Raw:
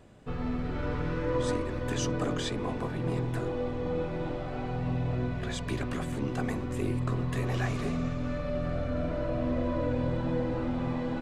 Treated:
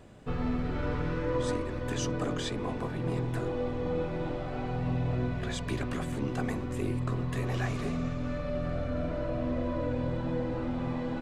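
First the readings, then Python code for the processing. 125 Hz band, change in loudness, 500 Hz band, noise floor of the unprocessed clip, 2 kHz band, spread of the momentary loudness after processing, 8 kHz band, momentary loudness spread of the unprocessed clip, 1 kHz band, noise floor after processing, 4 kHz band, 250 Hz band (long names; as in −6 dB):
−1.0 dB, −1.0 dB, −1.0 dB, −35 dBFS, −1.0 dB, 3 LU, −1.0 dB, 4 LU, −1.0 dB, −35 dBFS, −1.0 dB, −1.0 dB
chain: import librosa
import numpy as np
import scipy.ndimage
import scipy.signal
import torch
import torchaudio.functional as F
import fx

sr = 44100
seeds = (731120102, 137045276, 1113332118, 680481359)

y = fx.rider(x, sr, range_db=5, speed_s=2.0)
y = F.gain(torch.from_numpy(y), -1.0).numpy()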